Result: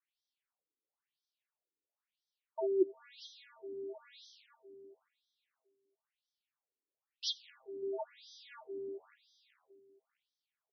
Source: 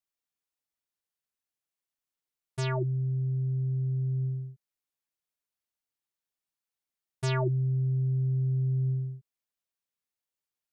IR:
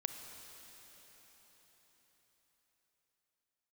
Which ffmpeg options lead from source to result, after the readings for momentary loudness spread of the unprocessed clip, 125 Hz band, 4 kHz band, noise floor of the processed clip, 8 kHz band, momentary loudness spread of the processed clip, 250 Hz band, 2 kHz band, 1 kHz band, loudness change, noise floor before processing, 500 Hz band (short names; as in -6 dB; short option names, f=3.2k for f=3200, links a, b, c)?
9 LU, under -40 dB, +3.0 dB, under -85 dBFS, n/a, 23 LU, -8.0 dB, -16.0 dB, -9.5 dB, -10.0 dB, under -85 dBFS, +1.5 dB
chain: -filter_complex "[0:a]equalizer=f=75:w=0.85:g=10.5,acrusher=bits=9:mode=log:mix=0:aa=0.000001,asplit=2[a][b];[b]adelay=596,lowpass=f=3.6k:p=1,volume=-10.5dB,asplit=2[c][d];[d]adelay=596,lowpass=f=3.6k:p=1,volume=0.25,asplit=2[e][f];[f]adelay=596,lowpass=f=3.6k:p=1,volume=0.25[g];[a][c][e][g]amix=inputs=4:normalize=0,afftfilt=real='re*between(b*sr/1024,340*pow(4500/340,0.5+0.5*sin(2*PI*0.99*pts/sr))/1.41,340*pow(4500/340,0.5+0.5*sin(2*PI*0.99*pts/sr))*1.41)':imag='im*between(b*sr/1024,340*pow(4500/340,0.5+0.5*sin(2*PI*0.99*pts/sr))/1.41,340*pow(4500/340,0.5+0.5*sin(2*PI*0.99*pts/sr))*1.41)':win_size=1024:overlap=0.75,volume=6dB"